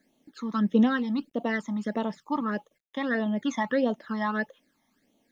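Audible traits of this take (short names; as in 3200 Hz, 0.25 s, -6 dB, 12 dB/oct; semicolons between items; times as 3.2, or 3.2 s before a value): a quantiser's noise floor 12-bit, dither none; phasing stages 12, 1.6 Hz, lowest notch 460–1700 Hz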